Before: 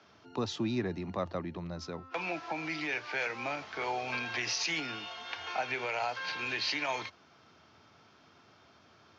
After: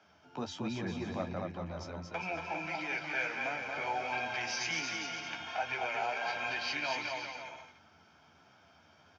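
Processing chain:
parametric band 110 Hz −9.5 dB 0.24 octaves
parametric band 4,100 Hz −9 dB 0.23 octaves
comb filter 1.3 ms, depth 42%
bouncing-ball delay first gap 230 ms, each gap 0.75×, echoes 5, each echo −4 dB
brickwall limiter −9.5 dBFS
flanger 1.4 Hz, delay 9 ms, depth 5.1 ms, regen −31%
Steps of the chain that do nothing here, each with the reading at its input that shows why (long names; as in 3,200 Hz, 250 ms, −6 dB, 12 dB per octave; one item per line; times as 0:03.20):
brickwall limiter −9.5 dBFS: peak of its input −16.5 dBFS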